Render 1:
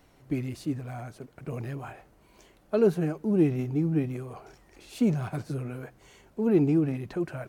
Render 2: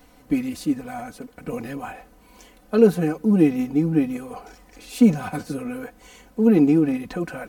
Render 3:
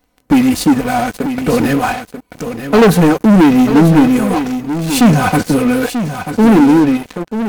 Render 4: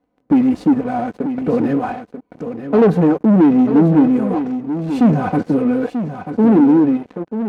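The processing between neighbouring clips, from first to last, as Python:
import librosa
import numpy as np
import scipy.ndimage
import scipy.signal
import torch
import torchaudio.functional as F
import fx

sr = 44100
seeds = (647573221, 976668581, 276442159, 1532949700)

y1 = fx.high_shelf(x, sr, hz=8300.0, db=5.5)
y1 = y1 + 0.83 * np.pad(y1, (int(4.0 * sr / 1000.0), 0))[:len(y1)]
y1 = y1 * librosa.db_to_amplitude(5.0)
y2 = fx.fade_out_tail(y1, sr, length_s=1.26)
y2 = fx.leveller(y2, sr, passes=5)
y2 = y2 + 10.0 ** (-9.5 / 20.0) * np.pad(y2, (int(938 * sr / 1000.0), 0))[:len(y2)]
y3 = fx.bandpass_q(y2, sr, hz=330.0, q=0.63)
y3 = y3 * librosa.db_to_amplitude(-2.5)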